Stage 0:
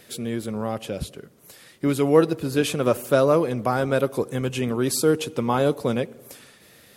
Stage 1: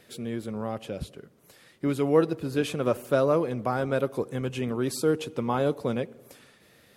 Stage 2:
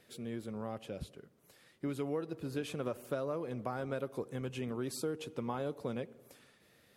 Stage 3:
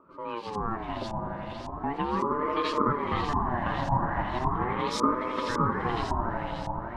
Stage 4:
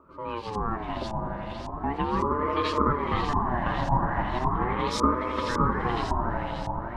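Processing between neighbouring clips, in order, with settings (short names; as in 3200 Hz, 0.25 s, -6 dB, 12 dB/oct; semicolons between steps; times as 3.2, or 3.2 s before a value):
high shelf 4600 Hz -7 dB; gain -4.5 dB
compressor 10:1, threshold -24 dBFS, peak gain reduction 10 dB; gain -8 dB
swelling echo 84 ms, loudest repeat 5, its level -8 dB; LFO low-pass saw up 1.8 Hz 420–6200 Hz; ring modulator with a swept carrier 590 Hz, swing 30%, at 0.38 Hz; gain +8 dB
octaver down 2 oct, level -3 dB; gain +1.5 dB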